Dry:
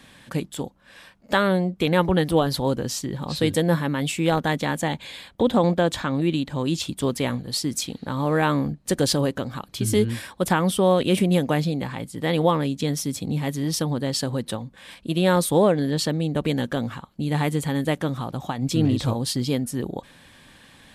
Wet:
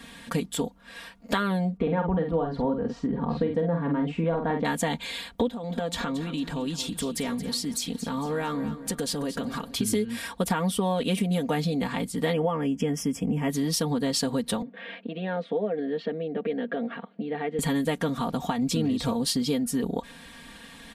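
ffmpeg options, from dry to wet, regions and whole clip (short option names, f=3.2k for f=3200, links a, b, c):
-filter_complex "[0:a]asettb=1/sr,asplit=3[a][b][c];[a]atrim=end=1.774[d];[b]atrim=start=1.77:end=4.65,asetpts=PTS-STARTPTS,afade=t=in:d=0.004:c=qsin,afade=t=out:st=2.876:d=0.004:c=qsin,lowpass=1.2k,asplit=2[e][f];[f]adelay=48,volume=-5.5dB[g];[e][g]amix=inputs=2:normalize=0,atrim=end_sample=127008[h];[c]atrim=start=4.646[i];[d][h]acrossfade=d=0.004:c1=hsin:c2=qsin[j];[j][i]acrossfade=d=0.004:c1=qsin:c2=hsin,asettb=1/sr,asplit=3[k][l][m];[k]atrim=end=5.484[n];[l]atrim=start=5.48:end=9.76,asetpts=PTS-STARTPTS,afade=t=in:d=0.004:c=qsin,afade=t=out:st=4.276:d=0.004:c=qsin,acompressor=threshold=-31dB:ratio=4:attack=3.2:release=140:knee=1:detection=peak,aecho=1:1:225|450|675|900:0.237|0.0949|0.0379|0.0152,atrim=end_sample=188748[o];[m]atrim=start=9.756[p];[n][o]acrossfade=d=0.004:c1=hsin:c2=qsin[q];[q][p]acrossfade=d=0.004:c1=qsin:c2=hsin,asettb=1/sr,asplit=3[r][s][t];[r]atrim=end=12.334[u];[s]atrim=start=12.33:end=13.5,asetpts=PTS-STARTPTS,afade=t=in:d=0.004:c=qsin,afade=t=out:st=1.166:d=0.004:c=qsin,asuperstop=centerf=4000:order=8:qfactor=2.5,highshelf=f=4.3k:g=-10.5[v];[t]atrim=start=13.496[w];[u][v]acrossfade=d=0.004:c1=hsin:c2=qsin[x];[x][w]acrossfade=d=0.004:c1=qsin:c2=hsin,asettb=1/sr,asplit=3[y][z][aa];[y]atrim=end=14.624[ab];[z]atrim=start=14.62:end=17.59,asetpts=PTS-STARTPTS,afade=t=in:d=0.004:c=qsin,afade=t=out:st=2.966:d=0.004:c=qsin,acompressor=threshold=-38dB:ratio=2.5:attack=3.2:release=140:knee=1:detection=peak,highpass=f=190:w=0.5412,highpass=f=190:w=1.3066,equalizer=f=200:t=q:w=4:g=4,equalizer=f=460:t=q:w=4:g=8,equalizer=f=670:t=q:w=4:g=7,equalizer=f=1k:t=q:w=4:g=-7,equalizer=f=1.8k:t=q:w=4:g=4,lowpass=f=3k:w=0.5412,lowpass=f=3k:w=1.3066[ac];[aa]atrim=start=17.586[ad];[ab][ac]acrossfade=d=0.004:c1=hsin:c2=qsin[ae];[ae][ad]acrossfade=d=0.004:c1=qsin:c2=hsin,aecho=1:1:4.3:0.78,acompressor=threshold=-25dB:ratio=6,volume=2dB"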